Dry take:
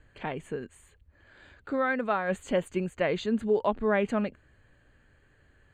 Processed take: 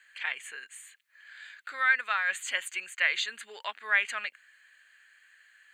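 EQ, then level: resonant high-pass 1800 Hz, resonance Q 2.1; high shelf 2700 Hz +11.5 dB; 0.0 dB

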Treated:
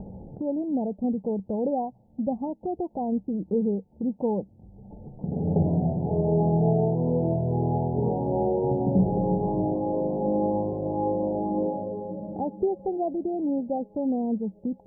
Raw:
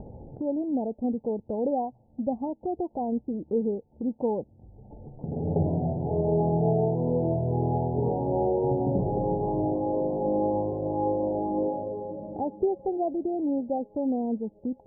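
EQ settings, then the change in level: bell 190 Hz +11.5 dB 0.26 oct; 0.0 dB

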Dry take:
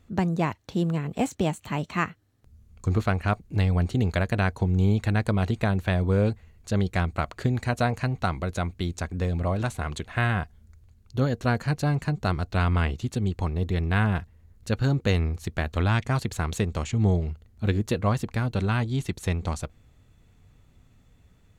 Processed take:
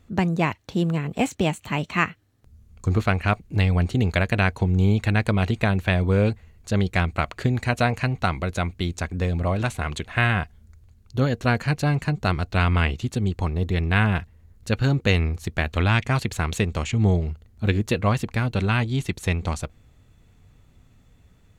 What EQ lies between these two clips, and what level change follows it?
dynamic EQ 2500 Hz, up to +7 dB, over -46 dBFS, Q 1.5; +2.5 dB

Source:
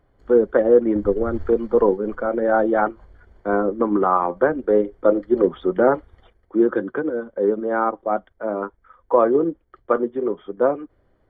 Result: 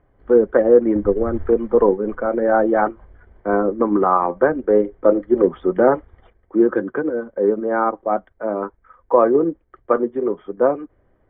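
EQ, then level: LPF 2700 Hz 24 dB/oct; notch 1400 Hz, Q 23; +2.0 dB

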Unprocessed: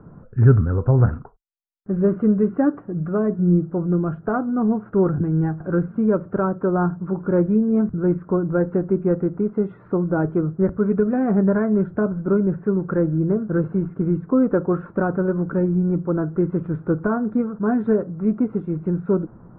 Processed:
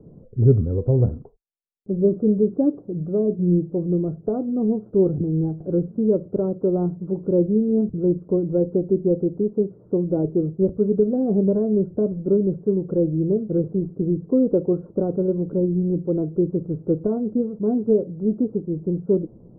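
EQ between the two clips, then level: ladder low-pass 590 Hz, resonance 40%; +5.0 dB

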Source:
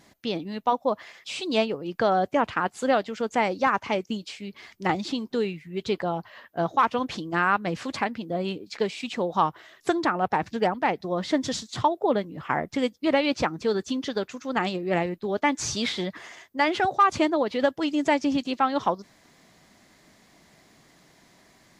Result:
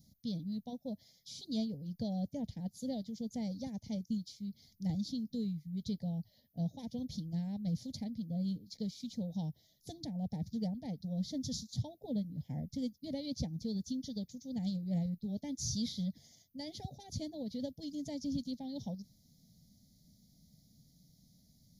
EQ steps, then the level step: Chebyshev band-stop 210–7500 Hz, order 2; fixed phaser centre 1800 Hz, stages 8; +1.5 dB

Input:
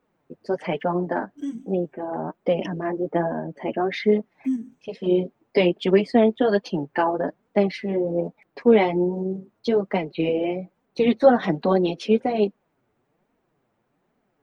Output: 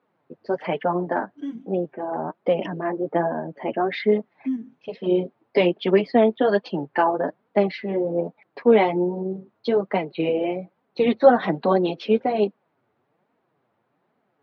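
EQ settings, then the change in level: Chebyshev band-pass 100–4300 Hz, order 3; bell 1100 Hz +4.5 dB 2.4 oct; -1.5 dB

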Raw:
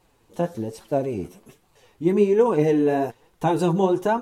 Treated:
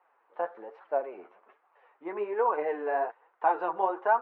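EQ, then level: ladder high-pass 550 Hz, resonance 20%; LPF 1900 Hz 24 dB/oct; bell 1300 Hz +3.5 dB 0.42 oct; +3.5 dB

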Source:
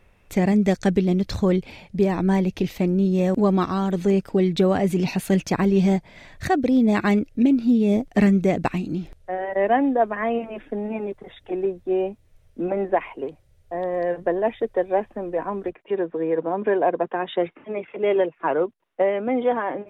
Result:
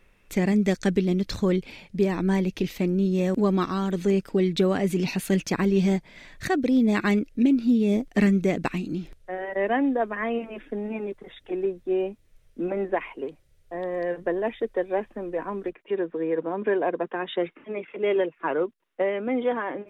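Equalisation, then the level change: bell 85 Hz -9 dB 1.7 oct; bell 730 Hz -7 dB 1 oct; 0.0 dB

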